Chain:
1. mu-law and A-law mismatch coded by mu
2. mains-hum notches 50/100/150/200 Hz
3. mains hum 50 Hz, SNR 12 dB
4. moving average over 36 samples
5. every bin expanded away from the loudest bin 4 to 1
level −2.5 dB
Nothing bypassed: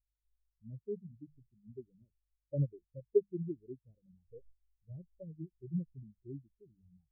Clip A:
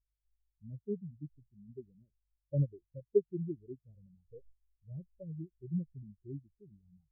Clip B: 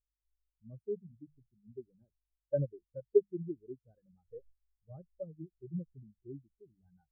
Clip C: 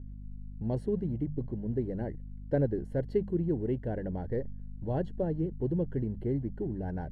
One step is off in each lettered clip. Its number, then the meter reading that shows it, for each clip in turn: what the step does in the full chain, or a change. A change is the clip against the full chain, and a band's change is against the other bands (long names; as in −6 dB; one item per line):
2, change in momentary loudness spread −1 LU
4, change in integrated loudness +2.5 LU
5, change in crest factor −9.5 dB